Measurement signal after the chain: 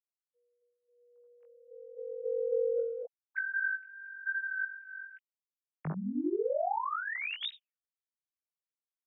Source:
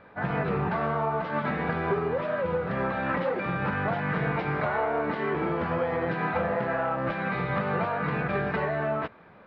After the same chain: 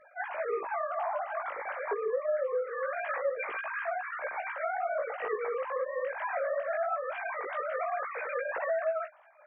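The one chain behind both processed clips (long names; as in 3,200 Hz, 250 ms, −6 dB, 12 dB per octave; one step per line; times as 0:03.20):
three sine waves on the formant tracks
downward compressor, threshold −25 dBFS
chorus effect 0.24 Hz, delay 16.5 ms, depth 3.4 ms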